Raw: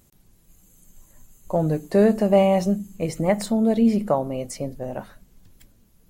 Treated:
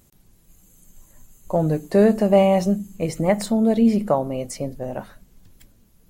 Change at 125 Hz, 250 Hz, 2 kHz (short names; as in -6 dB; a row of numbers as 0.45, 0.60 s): +1.5, +1.5, +1.5 dB